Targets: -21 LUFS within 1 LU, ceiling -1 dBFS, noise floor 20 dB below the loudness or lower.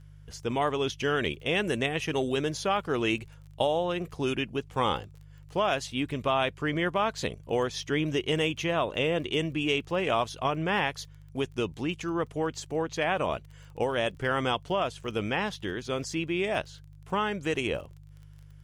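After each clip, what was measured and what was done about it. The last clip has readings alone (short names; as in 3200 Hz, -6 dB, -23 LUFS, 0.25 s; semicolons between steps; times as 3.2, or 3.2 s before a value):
ticks 24/s; hum 50 Hz; harmonics up to 150 Hz; hum level -47 dBFS; loudness -29.5 LUFS; peak -12.5 dBFS; loudness target -21.0 LUFS
-> de-click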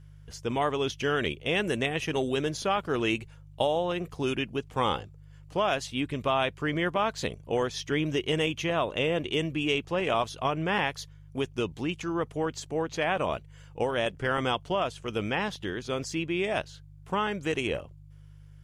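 ticks 0/s; hum 50 Hz; harmonics up to 150 Hz; hum level -47 dBFS
-> de-hum 50 Hz, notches 3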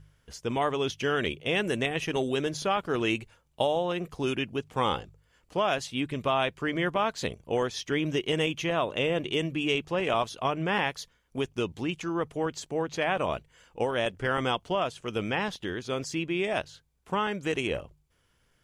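hum none; loudness -29.5 LUFS; peak -12.5 dBFS; loudness target -21.0 LUFS
-> gain +8.5 dB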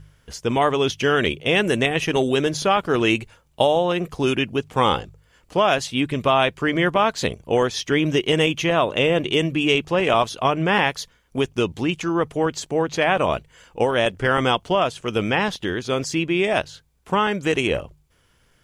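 loudness -21.0 LUFS; peak -4.0 dBFS; noise floor -61 dBFS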